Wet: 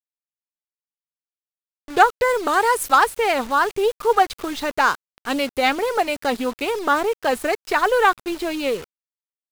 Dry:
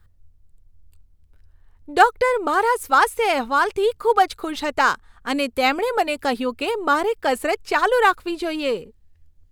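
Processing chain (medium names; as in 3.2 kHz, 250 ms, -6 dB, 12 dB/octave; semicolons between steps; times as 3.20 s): 2.28–2.95 s: treble shelf 4.2 kHz -> 2.1 kHz +8.5 dB; word length cut 6-bit, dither none; loudspeaker Doppler distortion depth 0.15 ms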